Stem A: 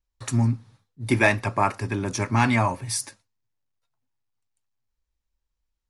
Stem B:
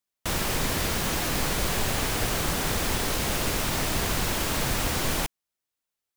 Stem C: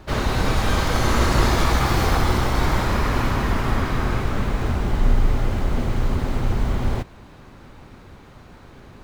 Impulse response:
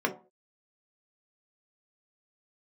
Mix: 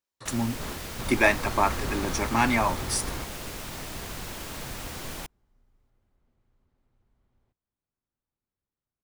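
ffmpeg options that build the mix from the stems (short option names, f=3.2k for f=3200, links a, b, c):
-filter_complex "[0:a]highpass=210,volume=-1dB,asplit=2[a][b];[1:a]volume=-10.5dB[c];[2:a]adelay=500,volume=-15dB[d];[b]apad=whole_len=420684[e];[d][e]sidechaingate=range=-35dB:threshold=-55dB:ratio=16:detection=peak[f];[a][c][f]amix=inputs=3:normalize=0"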